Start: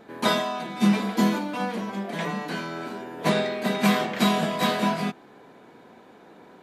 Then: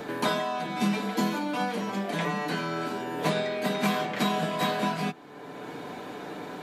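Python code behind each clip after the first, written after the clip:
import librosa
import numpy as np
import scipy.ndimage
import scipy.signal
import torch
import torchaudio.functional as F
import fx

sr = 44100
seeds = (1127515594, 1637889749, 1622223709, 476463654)

y = x + 0.39 * np.pad(x, (int(6.8 * sr / 1000.0), 0))[:len(x)]
y = fx.band_squash(y, sr, depth_pct=70)
y = y * 10.0 ** (-3.5 / 20.0)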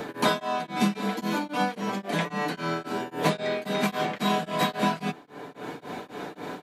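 y = x * np.abs(np.cos(np.pi * 3.7 * np.arange(len(x)) / sr))
y = y * 10.0 ** (4.0 / 20.0)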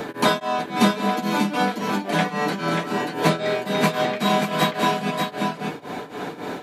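y = x + 10.0 ** (-4.5 / 20.0) * np.pad(x, (int(586 * sr / 1000.0), 0))[:len(x)]
y = y * 10.0 ** (4.5 / 20.0)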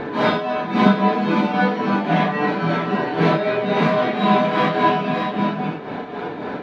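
y = fx.phase_scramble(x, sr, seeds[0], window_ms=200)
y = fx.air_absorb(y, sr, metres=280.0)
y = y * 10.0 ** (4.5 / 20.0)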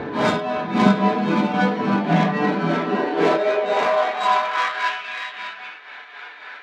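y = fx.tracing_dist(x, sr, depth_ms=0.056)
y = fx.filter_sweep_highpass(y, sr, from_hz=69.0, to_hz=1800.0, start_s=1.39, end_s=5.04, q=1.5)
y = y * 10.0 ** (-1.5 / 20.0)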